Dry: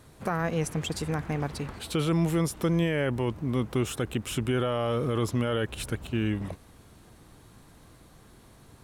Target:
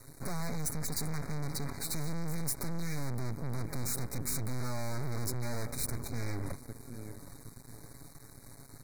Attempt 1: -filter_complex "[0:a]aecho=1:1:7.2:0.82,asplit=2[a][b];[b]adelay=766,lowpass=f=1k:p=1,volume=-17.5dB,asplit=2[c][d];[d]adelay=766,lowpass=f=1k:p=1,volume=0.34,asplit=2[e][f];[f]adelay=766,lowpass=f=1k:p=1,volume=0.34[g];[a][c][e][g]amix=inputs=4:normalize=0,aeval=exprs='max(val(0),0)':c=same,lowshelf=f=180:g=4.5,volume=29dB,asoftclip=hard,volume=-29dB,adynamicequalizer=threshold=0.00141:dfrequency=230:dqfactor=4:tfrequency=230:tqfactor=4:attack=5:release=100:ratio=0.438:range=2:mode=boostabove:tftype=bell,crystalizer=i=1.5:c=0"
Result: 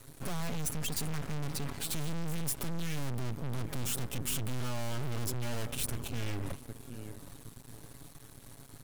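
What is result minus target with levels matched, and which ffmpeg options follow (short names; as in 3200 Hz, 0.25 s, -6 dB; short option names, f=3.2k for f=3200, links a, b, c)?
4000 Hz band +3.5 dB
-filter_complex "[0:a]aecho=1:1:7.2:0.82,asplit=2[a][b];[b]adelay=766,lowpass=f=1k:p=1,volume=-17.5dB,asplit=2[c][d];[d]adelay=766,lowpass=f=1k:p=1,volume=0.34,asplit=2[e][f];[f]adelay=766,lowpass=f=1k:p=1,volume=0.34[g];[a][c][e][g]amix=inputs=4:normalize=0,aeval=exprs='max(val(0),0)':c=same,lowshelf=f=180:g=4.5,volume=29dB,asoftclip=hard,volume=-29dB,adynamicequalizer=threshold=0.00141:dfrequency=230:dqfactor=4:tfrequency=230:tqfactor=4:attack=5:release=100:ratio=0.438:range=2:mode=boostabove:tftype=bell,asuperstop=centerf=3000:order=20:qfactor=2.2,crystalizer=i=1.5:c=0"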